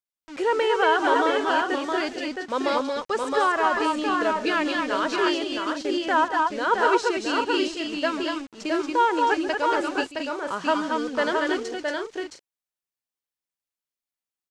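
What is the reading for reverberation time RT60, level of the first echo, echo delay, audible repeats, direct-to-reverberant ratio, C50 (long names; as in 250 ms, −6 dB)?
no reverb audible, −14.5 dB, 139 ms, 4, no reverb audible, no reverb audible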